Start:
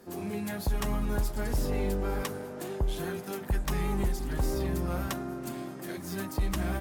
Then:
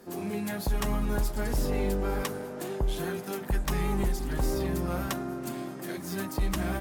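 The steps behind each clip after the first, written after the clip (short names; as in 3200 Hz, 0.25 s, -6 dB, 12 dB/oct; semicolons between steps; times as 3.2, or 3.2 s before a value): bell 81 Hz -8.5 dB 0.52 oct; gain +2 dB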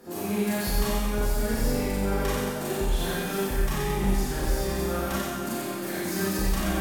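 limiter -25 dBFS, peak gain reduction 6.5 dB; on a send: thin delay 91 ms, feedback 58%, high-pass 1600 Hz, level -3.5 dB; on the sum: Schroeder reverb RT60 0.89 s, combs from 28 ms, DRR -6.5 dB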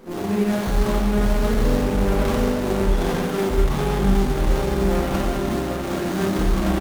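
echo 0.765 s -5.5 dB; running maximum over 17 samples; gain +6 dB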